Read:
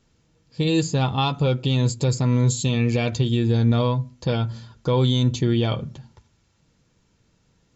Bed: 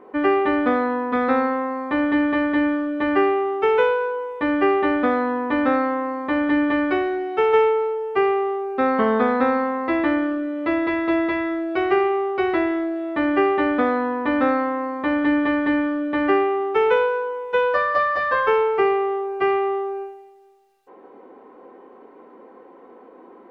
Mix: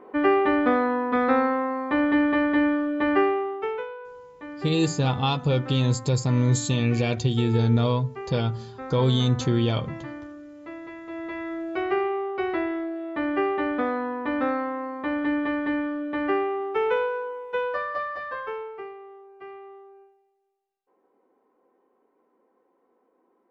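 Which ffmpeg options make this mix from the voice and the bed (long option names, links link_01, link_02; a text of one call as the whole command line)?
ffmpeg -i stem1.wav -i stem2.wav -filter_complex "[0:a]adelay=4050,volume=-2dB[link_01];[1:a]volume=10dB,afade=type=out:start_time=3.1:duration=0.76:silence=0.158489,afade=type=in:start_time=11.09:duration=0.56:silence=0.266073,afade=type=out:start_time=17.27:duration=1.67:silence=0.158489[link_02];[link_01][link_02]amix=inputs=2:normalize=0" out.wav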